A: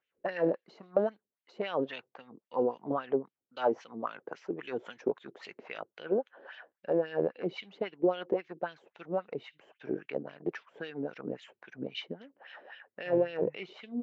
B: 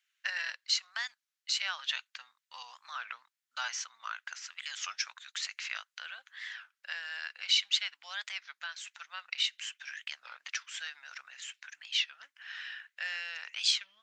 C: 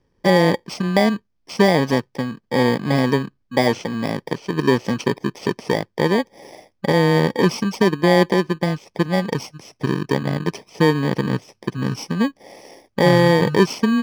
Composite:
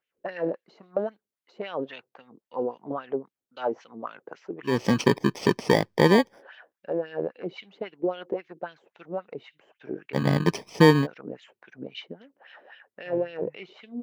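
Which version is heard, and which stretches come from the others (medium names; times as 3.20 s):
A
4.75–6.31 s: from C, crossfade 0.24 s
10.16–11.04 s: from C, crossfade 0.06 s
not used: B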